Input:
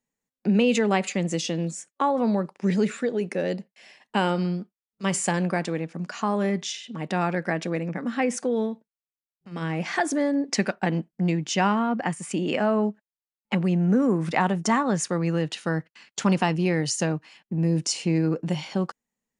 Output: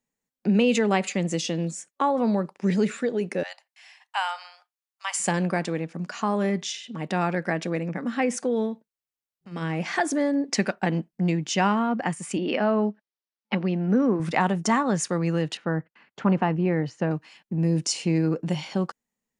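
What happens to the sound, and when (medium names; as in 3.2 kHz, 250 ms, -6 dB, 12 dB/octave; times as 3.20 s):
3.43–5.20 s: steep high-pass 740 Hz 48 dB/octave
12.37–14.20 s: brick-wall FIR band-pass 170–6100 Hz
15.57–17.11 s: low-pass 1.7 kHz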